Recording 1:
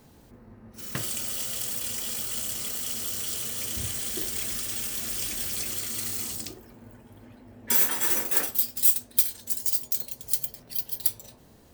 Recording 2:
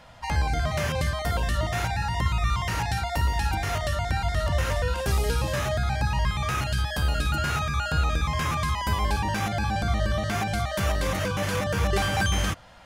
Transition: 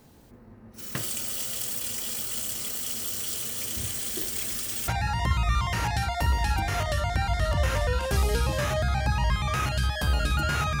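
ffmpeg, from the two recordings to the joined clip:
-filter_complex "[0:a]apad=whole_dur=10.8,atrim=end=10.8,atrim=end=4.882[a];[1:a]atrim=start=1.828:end=7.75[b];[a][b]acrossfade=d=0.004:c1=hsin:c2=hsin"

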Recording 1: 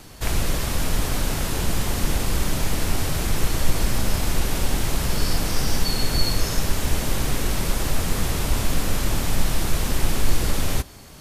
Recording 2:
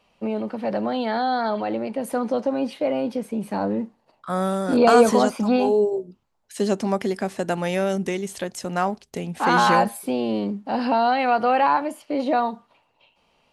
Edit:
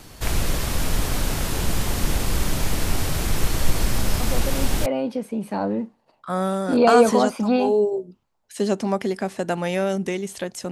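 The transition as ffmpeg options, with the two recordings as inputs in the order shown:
-filter_complex "[1:a]asplit=2[a][b];[0:a]apad=whole_dur=10.71,atrim=end=10.71,atrim=end=4.862[c];[b]atrim=start=2.858:end=8.71[d];[a]atrim=start=2.2:end=2.86,asetpts=PTS-STARTPTS,volume=-7dB,afade=t=in:d=0.004:c=hsin,afade=t=out:st=0.656:d=0.004:c=hsin,adelay=4200[e];[c][d]acrossfade=d=0.004:c1=hsin:c2=hsin[f];[f][e]amix=inputs=2:normalize=0"

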